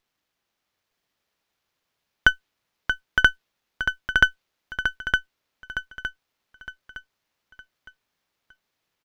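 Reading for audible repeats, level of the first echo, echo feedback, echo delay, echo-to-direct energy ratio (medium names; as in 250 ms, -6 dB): 4, -5.0 dB, 36%, 912 ms, -4.5 dB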